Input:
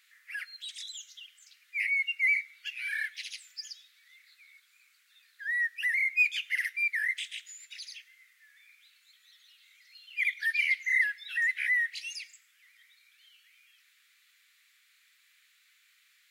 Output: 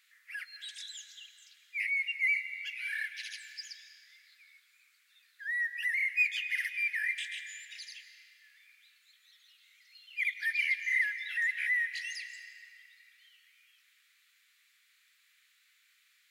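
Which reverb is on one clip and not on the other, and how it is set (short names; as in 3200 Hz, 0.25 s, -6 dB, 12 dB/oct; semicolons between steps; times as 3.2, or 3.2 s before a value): digital reverb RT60 2.9 s, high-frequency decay 0.75×, pre-delay 0.12 s, DRR 9.5 dB; gain -3 dB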